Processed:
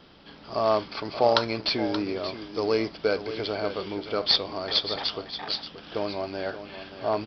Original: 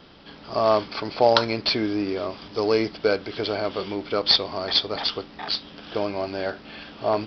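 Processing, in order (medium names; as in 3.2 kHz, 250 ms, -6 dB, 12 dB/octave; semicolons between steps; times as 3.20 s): delay 578 ms -11.5 dB; trim -3.5 dB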